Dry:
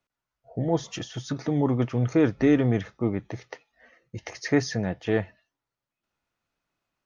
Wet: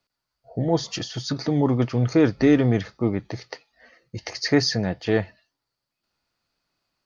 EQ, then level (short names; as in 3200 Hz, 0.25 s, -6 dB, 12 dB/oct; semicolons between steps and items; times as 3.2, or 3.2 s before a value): bell 4600 Hz +14.5 dB 0.3 oct; +3.0 dB